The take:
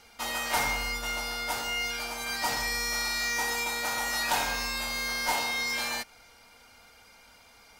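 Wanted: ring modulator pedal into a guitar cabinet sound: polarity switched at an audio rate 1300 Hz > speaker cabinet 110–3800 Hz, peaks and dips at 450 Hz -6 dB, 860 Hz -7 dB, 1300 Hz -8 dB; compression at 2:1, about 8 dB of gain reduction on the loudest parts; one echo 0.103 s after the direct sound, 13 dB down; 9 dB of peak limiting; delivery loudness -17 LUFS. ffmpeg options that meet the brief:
-af "acompressor=threshold=-38dB:ratio=2,alimiter=level_in=9dB:limit=-24dB:level=0:latency=1,volume=-9dB,aecho=1:1:103:0.224,aeval=exprs='val(0)*sgn(sin(2*PI*1300*n/s))':c=same,highpass=110,equalizer=f=450:t=q:w=4:g=-6,equalizer=f=860:t=q:w=4:g=-7,equalizer=f=1.3k:t=q:w=4:g=-8,lowpass=f=3.8k:w=0.5412,lowpass=f=3.8k:w=1.3066,volume=26.5dB"

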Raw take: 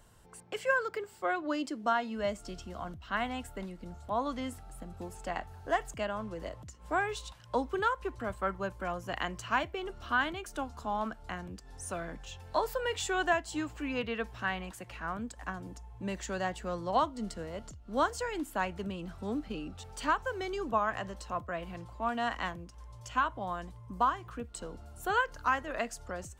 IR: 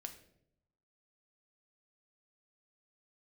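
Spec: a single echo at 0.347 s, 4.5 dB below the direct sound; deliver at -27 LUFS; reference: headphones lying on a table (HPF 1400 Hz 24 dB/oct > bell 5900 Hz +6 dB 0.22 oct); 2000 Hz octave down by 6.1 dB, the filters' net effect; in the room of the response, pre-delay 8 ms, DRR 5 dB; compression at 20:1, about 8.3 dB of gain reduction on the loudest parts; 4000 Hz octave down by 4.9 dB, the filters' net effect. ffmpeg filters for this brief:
-filter_complex "[0:a]equalizer=f=2k:t=o:g=-6,equalizer=f=4k:t=o:g=-4.5,acompressor=threshold=-32dB:ratio=20,aecho=1:1:347:0.596,asplit=2[a][b];[1:a]atrim=start_sample=2205,adelay=8[c];[b][c]afir=irnorm=-1:irlink=0,volume=-1dB[d];[a][d]amix=inputs=2:normalize=0,highpass=f=1.4k:w=0.5412,highpass=f=1.4k:w=1.3066,equalizer=f=5.9k:t=o:w=0.22:g=6,volume=19dB"

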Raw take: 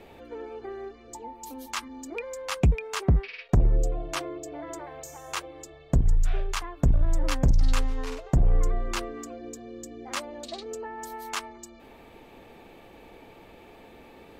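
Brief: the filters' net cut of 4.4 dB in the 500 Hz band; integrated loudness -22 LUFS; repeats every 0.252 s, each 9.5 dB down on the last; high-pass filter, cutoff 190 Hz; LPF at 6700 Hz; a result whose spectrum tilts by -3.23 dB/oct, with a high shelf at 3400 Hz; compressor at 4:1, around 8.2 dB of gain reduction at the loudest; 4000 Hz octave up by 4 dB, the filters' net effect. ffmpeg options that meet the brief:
-af "highpass=190,lowpass=6.7k,equalizer=f=500:t=o:g=-5.5,highshelf=f=3.4k:g=4,equalizer=f=4k:t=o:g=3,acompressor=threshold=-33dB:ratio=4,aecho=1:1:252|504|756|1008:0.335|0.111|0.0365|0.012,volume=17dB"

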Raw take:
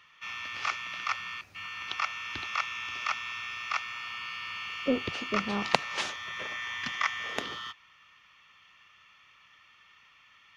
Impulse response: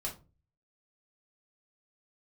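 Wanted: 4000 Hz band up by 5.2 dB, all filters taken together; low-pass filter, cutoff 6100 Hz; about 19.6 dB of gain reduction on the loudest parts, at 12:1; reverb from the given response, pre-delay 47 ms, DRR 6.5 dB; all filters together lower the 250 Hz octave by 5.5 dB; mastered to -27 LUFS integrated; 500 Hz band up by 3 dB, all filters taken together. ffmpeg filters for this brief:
-filter_complex "[0:a]lowpass=6.1k,equalizer=f=250:t=o:g=-7.5,equalizer=f=500:t=o:g=5,equalizer=f=4k:t=o:g=7.5,acompressor=threshold=-37dB:ratio=12,asplit=2[a][b];[1:a]atrim=start_sample=2205,adelay=47[c];[b][c]afir=irnorm=-1:irlink=0,volume=-7.5dB[d];[a][d]amix=inputs=2:normalize=0,volume=12.5dB"

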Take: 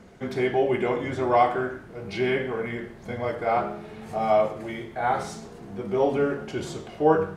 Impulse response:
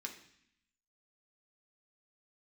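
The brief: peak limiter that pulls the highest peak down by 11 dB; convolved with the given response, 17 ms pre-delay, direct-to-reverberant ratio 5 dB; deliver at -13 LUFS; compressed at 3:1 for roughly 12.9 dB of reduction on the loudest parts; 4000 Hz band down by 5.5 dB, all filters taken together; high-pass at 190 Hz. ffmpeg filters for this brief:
-filter_complex "[0:a]highpass=190,equalizer=f=4k:t=o:g=-8,acompressor=threshold=-33dB:ratio=3,alimiter=level_in=7.5dB:limit=-24dB:level=0:latency=1,volume=-7.5dB,asplit=2[a][b];[1:a]atrim=start_sample=2205,adelay=17[c];[b][c]afir=irnorm=-1:irlink=0,volume=-3dB[d];[a][d]amix=inputs=2:normalize=0,volume=26dB"

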